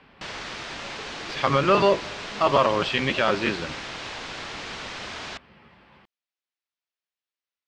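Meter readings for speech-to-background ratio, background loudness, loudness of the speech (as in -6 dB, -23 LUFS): 12.0 dB, -34.5 LUFS, -22.5 LUFS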